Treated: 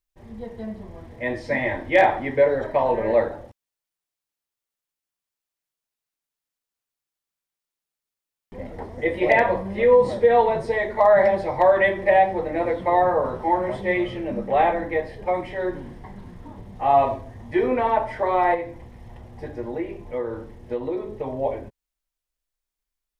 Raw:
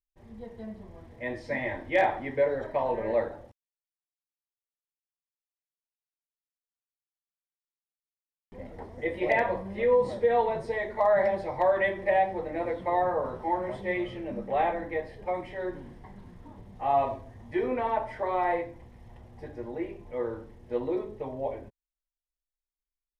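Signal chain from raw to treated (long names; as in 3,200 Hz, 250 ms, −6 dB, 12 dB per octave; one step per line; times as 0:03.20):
0:18.54–0:21.28: downward compressor, threshold −31 dBFS, peak gain reduction 7.5 dB
level +7.5 dB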